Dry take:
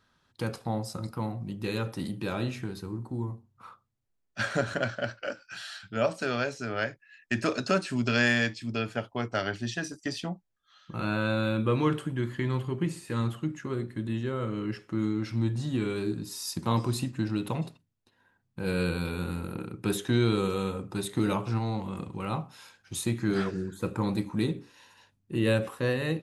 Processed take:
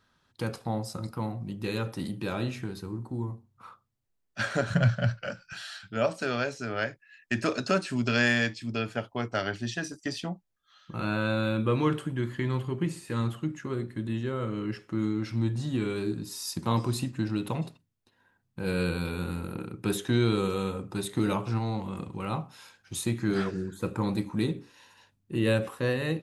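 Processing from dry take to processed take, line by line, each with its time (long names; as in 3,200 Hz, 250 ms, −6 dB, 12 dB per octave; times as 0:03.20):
0:04.70–0:05.53: low shelf with overshoot 220 Hz +10.5 dB, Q 3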